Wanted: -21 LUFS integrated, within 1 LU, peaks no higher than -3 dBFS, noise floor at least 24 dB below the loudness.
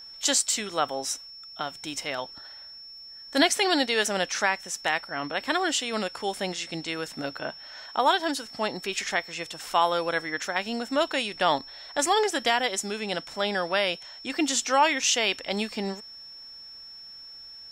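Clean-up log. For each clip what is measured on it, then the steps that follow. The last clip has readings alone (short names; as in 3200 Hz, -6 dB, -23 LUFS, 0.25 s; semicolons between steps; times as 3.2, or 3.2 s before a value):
steady tone 5400 Hz; tone level -42 dBFS; loudness -26.5 LUFS; peak -9.5 dBFS; loudness target -21.0 LUFS
-> notch 5400 Hz, Q 30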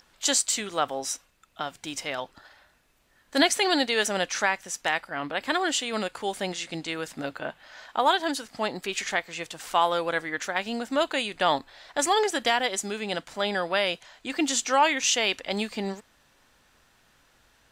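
steady tone none; loudness -27.0 LUFS; peak -9.5 dBFS; loudness target -21.0 LUFS
-> gain +6 dB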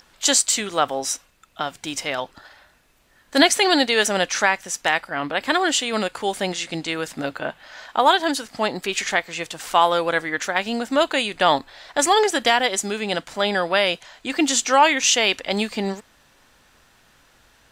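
loudness -21.0 LUFS; peak -3.5 dBFS; noise floor -57 dBFS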